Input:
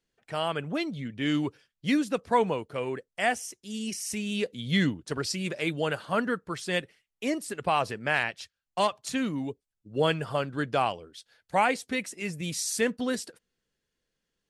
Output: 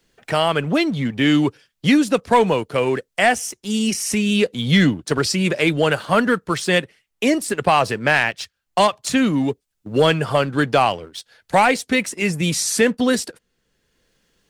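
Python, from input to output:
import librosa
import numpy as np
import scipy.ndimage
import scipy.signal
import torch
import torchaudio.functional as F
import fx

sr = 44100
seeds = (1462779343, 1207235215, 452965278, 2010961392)

y = fx.leveller(x, sr, passes=1)
y = fx.band_squash(y, sr, depth_pct=40)
y = F.gain(torch.from_numpy(y), 7.5).numpy()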